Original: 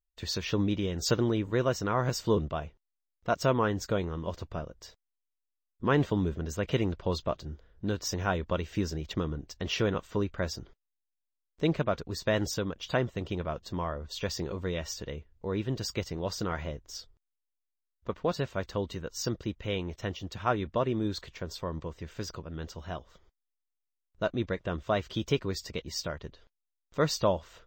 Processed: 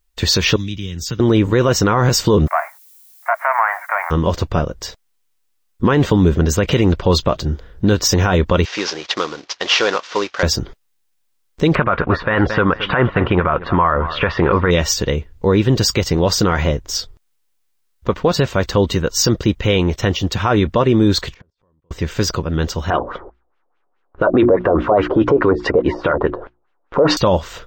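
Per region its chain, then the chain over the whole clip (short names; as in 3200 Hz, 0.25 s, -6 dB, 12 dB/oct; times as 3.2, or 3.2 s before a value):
0.56–1.2 passive tone stack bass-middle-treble 6-0-2 + notch 4200 Hz, Q 16 + three-band squash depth 70%
2.46–4.1 spectral whitening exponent 0.6 + Chebyshev band-pass 630–2200 Hz, order 5 + added noise violet -67 dBFS
8.65–10.43 CVSD 32 kbps + HPF 650 Hz
11.75–14.71 LPF 2700 Hz 24 dB/oct + bell 1300 Hz +13 dB 1.7 oct + feedback echo 0.223 s, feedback 25%, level -20.5 dB
21.34–21.91 LPF 1700 Hz 6 dB/oct + level quantiser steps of 23 dB + flipped gate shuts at -53 dBFS, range -35 dB
22.9–27.17 band shelf 640 Hz +12 dB 2.9 oct + notches 60/120/180/240/300/360 Hz + LFO low-pass sine 4.8 Hz 590–2900 Hz
whole clip: notch 640 Hz, Q 12; maximiser +24 dB; gain -4 dB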